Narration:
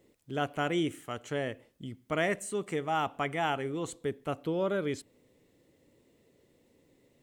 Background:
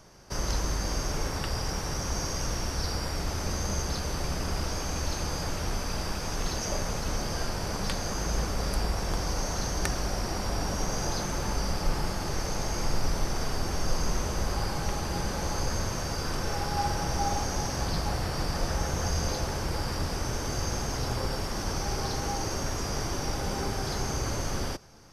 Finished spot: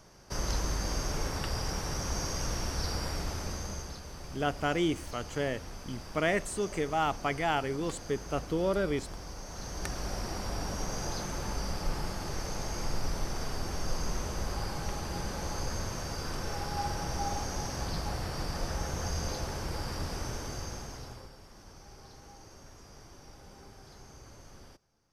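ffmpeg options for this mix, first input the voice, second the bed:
-filter_complex "[0:a]adelay=4050,volume=1dB[a];[1:a]volume=5.5dB,afade=t=out:st=3.09:d=0.91:silence=0.298538,afade=t=in:st=9.45:d=0.67:silence=0.398107,afade=t=out:st=20.22:d=1.1:silence=0.158489[b];[a][b]amix=inputs=2:normalize=0"

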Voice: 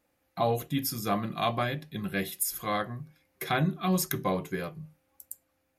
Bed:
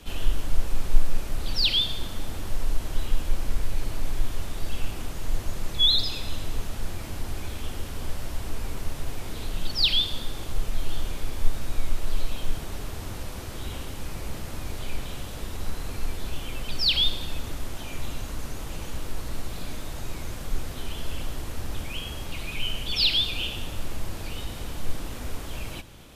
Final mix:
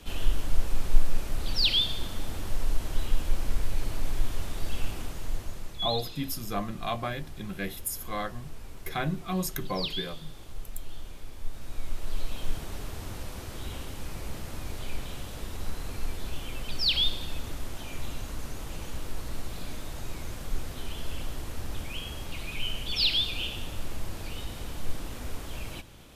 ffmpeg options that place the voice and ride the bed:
-filter_complex "[0:a]adelay=5450,volume=-3.5dB[a];[1:a]volume=7.5dB,afade=t=out:st=4.88:d=0.96:silence=0.298538,afade=t=in:st=11.45:d=1.05:silence=0.354813[b];[a][b]amix=inputs=2:normalize=0"

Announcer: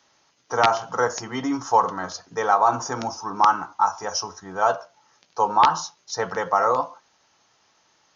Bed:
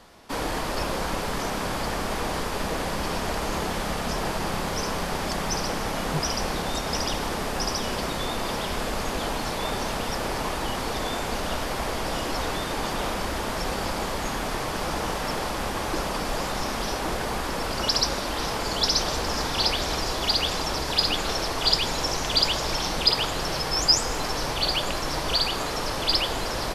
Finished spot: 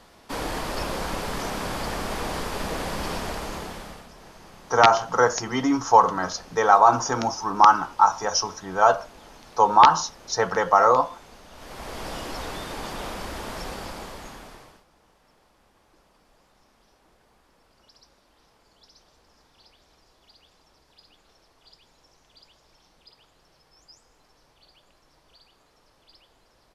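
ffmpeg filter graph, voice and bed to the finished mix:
-filter_complex "[0:a]adelay=4200,volume=3dB[a];[1:a]volume=13dB,afade=t=out:st=3.11:d=0.98:silence=0.11885,afade=t=in:st=11.52:d=0.52:silence=0.188365,afade=t=out:st=13.59:d=1.25:silence=0.0398107[b];[a][b]amix=inputs=2:normalize=0"

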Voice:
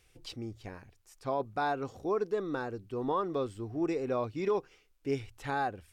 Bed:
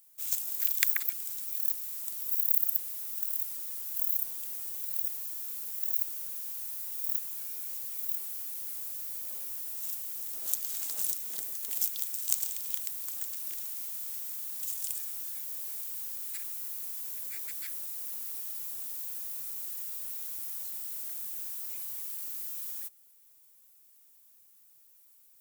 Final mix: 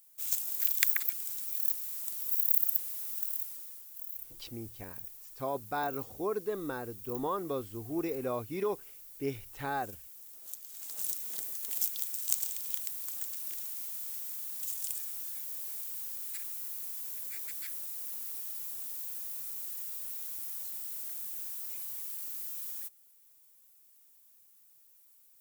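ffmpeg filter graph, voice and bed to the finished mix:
-filter_complex "[0:a]adelay=4150,volume=-2.5dB[a];[1:a]volume=10.5dB,afade=t=out:st=3.11:d=0.76:silence=0.251189,afade=t=in:st=10.72:d=0.49:silence=0.281838[b];[a][b]amix=inputs=2:normalize=0"

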